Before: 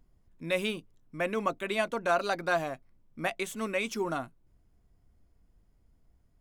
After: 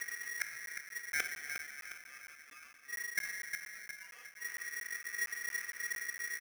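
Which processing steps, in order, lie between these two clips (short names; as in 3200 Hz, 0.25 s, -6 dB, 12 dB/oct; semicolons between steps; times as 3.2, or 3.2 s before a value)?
bell 470 Hz +10.5 dB 1.8 oct; comb 4.3 ms, depth 59%; reverse; compressor 6:1, threshold -32 dBFS, peak gain reduction 18 dB; reverse; flipped gate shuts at -39 dBFS, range -42 dB; rotary speaker horn 7 Hz, later 0.8 Hz, at 2.62; darkening echo 0.357 s, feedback 53%, level -7 dB; on a send at -6 dB: reverb RT60 2.6 s, pre-delay 6 ms; on the sum: crackling interface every 0.23 s, samples 512, zero, from 0.66; polarity switched at an audio rate 1900 Hz; gain +16.5 dB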